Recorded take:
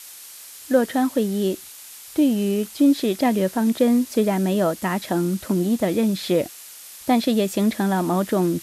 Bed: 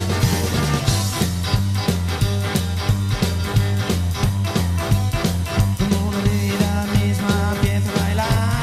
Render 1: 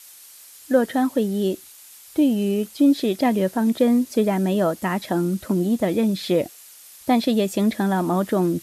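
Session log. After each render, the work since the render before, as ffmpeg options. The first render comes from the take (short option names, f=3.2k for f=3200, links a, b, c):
-af "afftdn=nr=6:nf=-41"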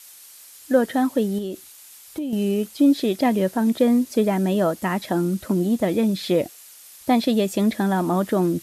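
-filter_complex "[0:a]asettb=1/sr,asplit=3[a][b][c];[a]atrim=end=1.384[d];[b]atrim=start=1.38:end=2.33,asetpts=PTS-STARTPTS,afade=t=in:d=0.004:c=qsin,afade=t=out:st=0.946:d=0.004:c=qsin,acompressor=threshold=-25dB:ratio=6:attack=3.2:release=140:knee=1:detection=peak[e];[c]atrim=start=2.326[f];[d][e]acrossfade=d=0.004:c1=hsin:c2=qsin[g];[g][f]acrossfade=d=0.004:c1=qsin:c2=hsin"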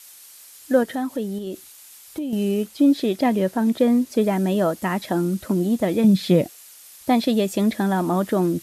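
-filter_complex "[0:a]asettb=1/sr,asplit=3[a][b][c];[a]atrim=end=0.834[d];[b]atrim=start=0.83:end=1.47,asetpts=PTS-STARTPTS,afade=t=in:d=0.004:c=qsin,afade=t=out:st=0.636:d=0.004:c=qsin,acompressor=threshold=-31dB:ratio=1.5:attack=3.2:release=140:knee=1:detection=peak[e];[c]atrim=start=1.466[f];[d][e]acrossfade=d=0.004:c1=hsin:c2=qsin[g];[g][f]acrossfade=d=0.004:c1=qsin:c2=hsin,asettb=1/sr,asplit=3[h][i][j];[h]atrim=end=2.634[k];[i]atrim=start=2.63:end=4.21,asetpts=PTS-STARTPTS,afade=t=in:d=0.004:c=qsin,afade=t=out:st=1.576:d=0.004:c=qsin,highshelf=f=4.9k:g=-3.5[l];[j]atrim=start=4.206[m];[k][l]acrossfade=d=0.004:c1=hsin:c2=qsin[n];[n][m]acrossfade=d=0.004:c1=qsin:c2=hsin,asettb=1/sr,asplit=3[o][p][q];[o]atrim=end=6.044[r];[p]atrim=start=6.04:end=6.44,asetpts=PTS-STARTPTS,afade=t=in:d=0.004:c=qsin,afade=t=out:st=0.396:d=0.004:c=qsin,equalizer=f=170:w=1.5:g=10[s];[q]atrim=start=6.436[t];[r][s]acrossfade=d=0.004:c1=hsin:c2=qsin[u];[u][t]acrossfade=d=0.004:c1=qsin:c2=hsin"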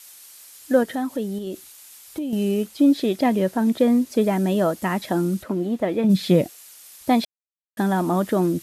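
-filter_complex "[0:a]asplit=3[a][b][c];[a]afade=t=out:st=5.42:d=0.02[d];[b]bass=f=250:g=-7,treble=f=4k:g=-13,afade=t=in:st=5.42:d=0.02,afade=t=out:st=6.09:d=0.02[e];[c]afade=t=in:st=6.09:d=0.02[f];[d][e][f]amix=inputs=3:normalize=0,asplit=3[g][h][i];[g]atrim=end=7.25,asetpts=PTS-STARTPTS,afade=t=out:st=7.246:d=0.004:c=hsin[j];[h]atrim=start=7.25:end=7.77,asetpts=PTS-STARTPTS,volume=0[k];[i]atrim=start=7.77,asetpts=PTS-STARTPTS,afade=t=in:d=0.004:c=hsin[l];[j][k][l]concat=n=3:v=0:a=1"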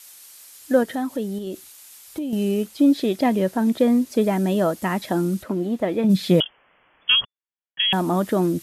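-filter_complex "[0:a]asettb=1/sr,asplit=3[a][b][c];[a]atrim=end=6.404[d];[b]atrim=start=6.4:end=7.93,asetpts=PTS-STARTPTS,afade=t=in:d=0.004:c=qsin,afade=t=out:st=1.526:d=0.004:c=qsin,lowpass=f=3k:t=q:w=0.5098,lowpass=f=3k:t=q:w=0.6013,lowpass=f=3k:t=q:w=0.9,lowpass=f=3k:t=q:w=2.563,afreqshift=-3500[e];[c]atrim=start=7.926[f];[d][e]acrossfade=d=0.004:c1=hsin:c2=qsin[g];[g][f]acrossfade=d=0.004:c1=qsin:c2=hsin"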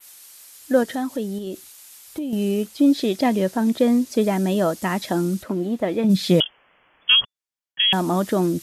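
-af "adynamicequalizer=threshold=0.00891:dfrequency=5800:dqfactor=0.82:tfrequency=5800:tqfactor=0.82:attack=5:release=100:ratio=0.375:range=3:mode=boostabove:tftype=bell"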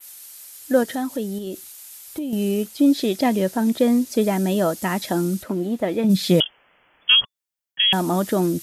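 -af "highshelf=f=9.9k:g=8,bandreject=f=1.1k:w=21"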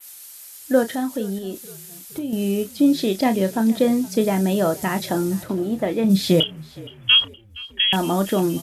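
-filter_complex "[0:a]asplit=2[a][b];[b]adelay=31,volume=-10.5dB[c];[a][c]amix=inputs=2:normalize=0,asplit=5[d][e][f][g][h];[e]adelay=468,afreqshift=-38,volume=-21dB[i];[f]adelay=936,afreqshift=-76,volume=-26.8dB[j];[g]adelay=1404,afreqshift=-114,volume=-32.7dB[k];[h]adelay=1872,afreqshift=-152,volume=-38.5dB[l];[d][i][j][k][l]amix=inputs=5:normalize=0"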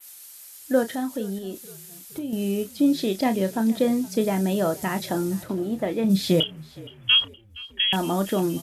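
-af "volume=-3.5dB"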